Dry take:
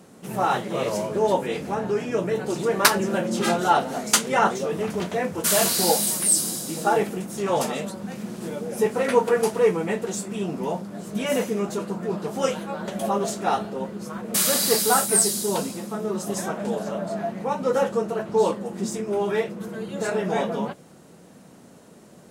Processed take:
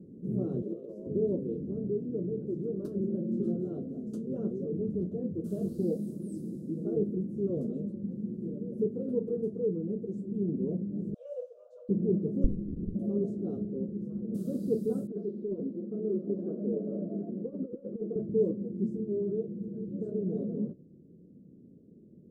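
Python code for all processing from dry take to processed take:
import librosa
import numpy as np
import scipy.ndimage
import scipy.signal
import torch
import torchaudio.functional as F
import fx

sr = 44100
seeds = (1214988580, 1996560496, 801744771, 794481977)

y = fx.chain(x, sr, fx.highpass(hz=370.0, slope=12),
    fx.over_compress(threshold_db=-30.0, ratio=-0.5), at=(0.62, 1.07))
y = fx.chain(y, sr, fx.cheby1_highpass(hz=490.0, order=10),
    fx.air_absorb(metres=82.0), at=(11.14, 11.89))
y = fx.chain(y, sr, fx.highpass(hz=130.0, slope=24),
    fx.running_max(window=65), at=(12.44, 12.95))
y = fx.chain(y, sr, fx.bandpass_edges(low_hz=300.0, high_hz=3600.0),
    fx.over_compress(threshold_db=-27.0, ratio=-0.5),
    fx.air_absorb(metres=280.0), at=(15.07, 18.16))
y = scipy.signal.sosfilt(scipy.signal.cheby2(4, 40, 790.0, 'lowpass', fs=sr, output='sos'), y)
y = fx.rider(y, sr, range_db=10, speed_s=2.0)
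y = y * librosa.db_to_amplitude(-2.5)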